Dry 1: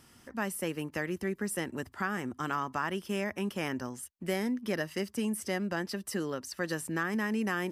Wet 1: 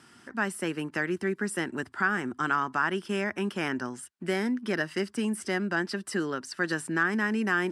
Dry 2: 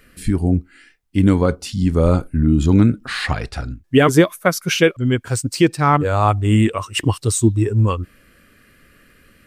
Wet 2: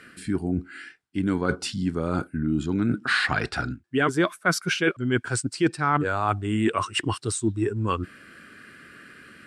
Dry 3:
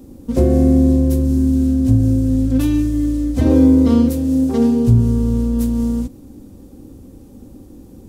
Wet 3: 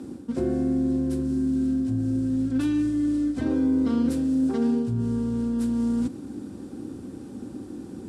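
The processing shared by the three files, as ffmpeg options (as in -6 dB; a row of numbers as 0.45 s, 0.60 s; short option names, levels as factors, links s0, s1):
-af "areverse,acompressor=threshold=0.0631:ratio=6,areverse,highpass=140,equalizer=f=360:t=q:w=4:g=3,equalizer=f=530:t=q:w=4:g=-6,equalizer=f=1500:t=q:w=4:g=8,equalizer=f=6400:t=q:w=4:g=-5,lowpass=f=9400:w=0.5412,lowpass=f=9400:w=1.3066,volume=1.5"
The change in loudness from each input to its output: +4.5 LU, -8.0 LU, -9.5 LU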